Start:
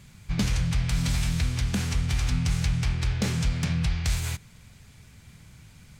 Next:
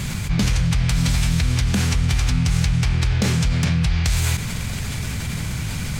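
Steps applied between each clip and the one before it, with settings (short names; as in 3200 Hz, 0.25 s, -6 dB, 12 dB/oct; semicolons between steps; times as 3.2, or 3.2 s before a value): fast leveller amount 70%; gain +4 dB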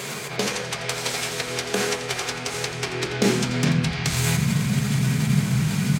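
high-pass sweep 440 Hz -> 180 Hz, 2.53–4.14; echo 86 ms -12.5 dB; reverb RT60 0.50 s, pre-delay 3 ms, DRR 4 dB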